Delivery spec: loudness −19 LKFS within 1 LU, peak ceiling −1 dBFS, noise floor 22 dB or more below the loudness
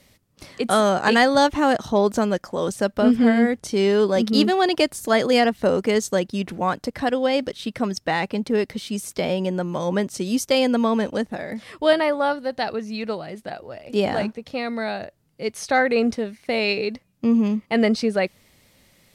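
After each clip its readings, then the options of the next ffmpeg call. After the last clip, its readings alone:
integrated loudness −21.5 LKFS; sample peak −4.5 dBFS; target loudness −19.0 LKFS
→ -af "volume=2.5dB"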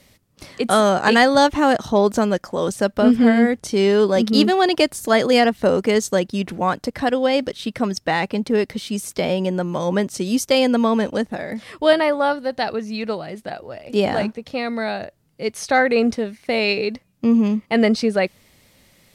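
integrated loudness −19.0 LKFS; sample peak −2.0 dBFS; background noise floor −61 dBFS

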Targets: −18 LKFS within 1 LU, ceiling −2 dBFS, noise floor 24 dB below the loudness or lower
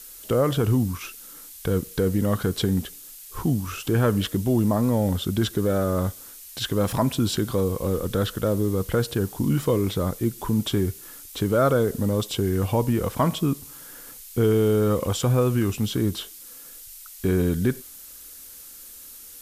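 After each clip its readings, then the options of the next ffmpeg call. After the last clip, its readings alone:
background noise floor −43 dBFS; target noise floor −48 dBFS; integrated loudness −24.0 LKFS; sample peak −10.5 dBFS; target loudness −18.0 LKFS
→ -af "afftdn=noise_reduction=6:noise_floor=-43"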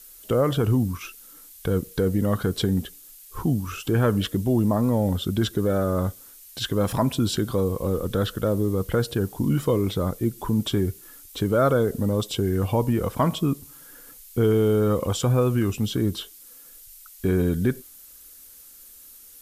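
background noise floor −48 dBFS; integrated loudness −24.0 LKFS; sample peak −10.5 dBFS; target loudness −18.0 LKFS
→ -af "volume=6dB"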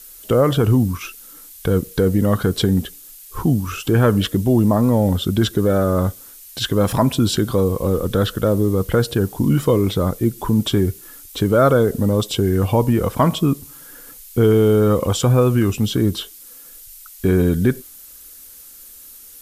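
integrated loudness −18.0 LKFS; sample peak −4.5 dBFS; background noise floor −42 dBFS

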